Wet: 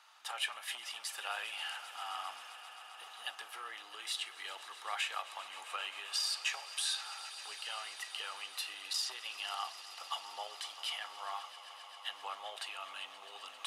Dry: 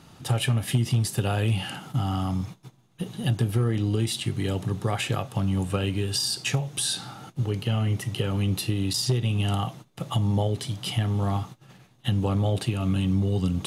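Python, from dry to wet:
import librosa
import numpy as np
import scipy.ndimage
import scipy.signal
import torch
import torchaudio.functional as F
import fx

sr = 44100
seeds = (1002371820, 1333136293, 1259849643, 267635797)

y = scipy.signal.sosfilt(scipy.signal.butter(4, 920.0, 'highpass', fs=sr, output='sos'), x)
y = fx.high_shelf(y, sr, hz=5800.0, db=-10.0)
y = fx.echo_swell(y, sr, ms=132, loudest=5, wet_db=-18.0)
y = F.gain(torch.from_numpy(y), -3.5).numpy()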